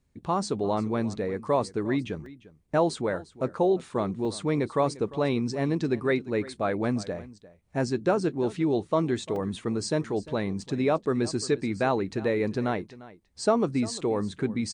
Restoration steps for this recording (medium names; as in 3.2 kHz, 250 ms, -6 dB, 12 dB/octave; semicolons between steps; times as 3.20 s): interpolate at 2.26/4.25/9.36/10.62 s, 2.2 ms; inverse comb 349 ms -18.5 dB